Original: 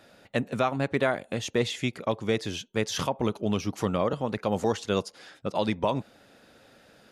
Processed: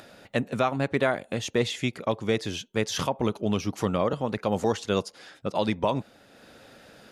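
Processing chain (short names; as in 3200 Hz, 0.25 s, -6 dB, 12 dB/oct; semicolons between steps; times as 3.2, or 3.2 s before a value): upward compressor, threshold -45 dBFS; gain +1 dB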